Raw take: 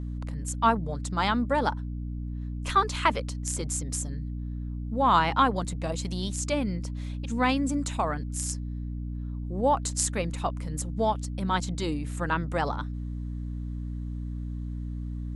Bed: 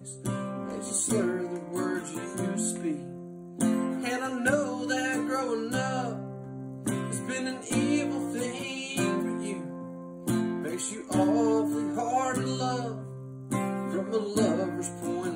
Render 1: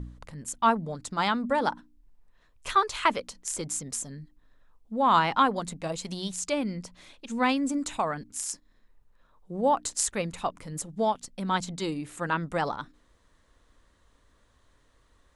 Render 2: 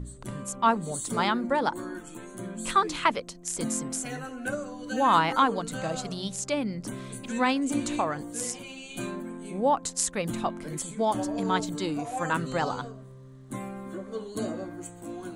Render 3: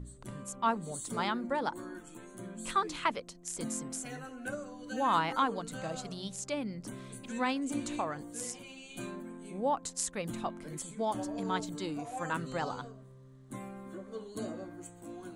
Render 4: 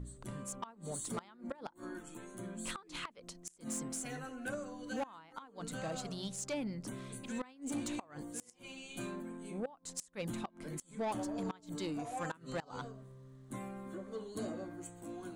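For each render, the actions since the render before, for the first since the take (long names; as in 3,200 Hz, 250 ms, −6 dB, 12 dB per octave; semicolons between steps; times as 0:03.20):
hum removal 60 Hz, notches 5
mix in bed −7 dB
level −7 dB
gate with flip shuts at −23 dBFS, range −26 dB; soft clipping −31.5 dBFS, distortion −13 dB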